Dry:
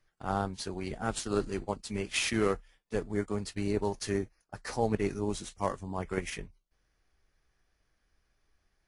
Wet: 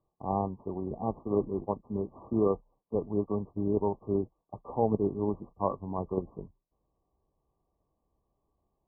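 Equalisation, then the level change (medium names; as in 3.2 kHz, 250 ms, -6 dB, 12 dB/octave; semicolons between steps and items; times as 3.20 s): high-pass 120 Hz 6 dB/octave; brick-wall FIR low-pass 1.2 kHz; distance through air 450 m; +4.0 dB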